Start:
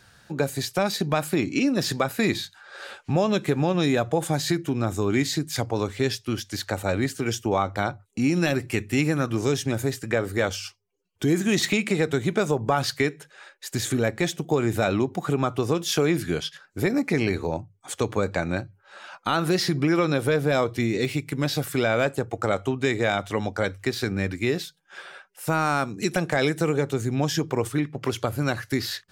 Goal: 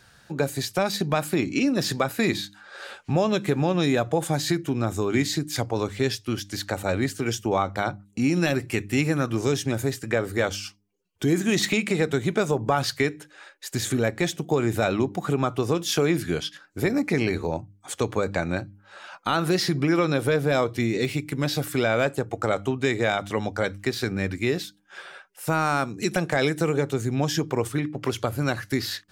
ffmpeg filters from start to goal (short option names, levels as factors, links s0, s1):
-af "bandreject=f=100.6:t=h:w=4,bandreject=f=201.2:t=h:w=4,bandreject=f=301.8:t=h:w=4"